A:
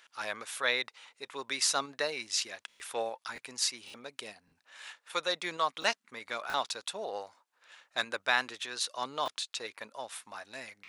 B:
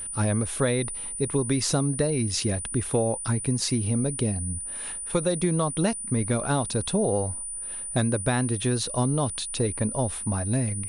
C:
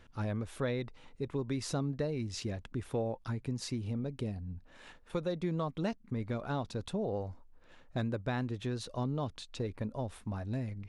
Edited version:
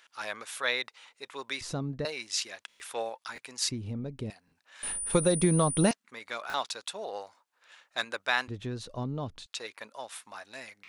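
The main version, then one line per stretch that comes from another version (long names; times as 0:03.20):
A
0:01.61–0:02.05: punch in from C
0:03.69–0:04.30: punch in from C
0:04.83–0:05.91: punch in from B
0:08.48–0:09.46: punch in from C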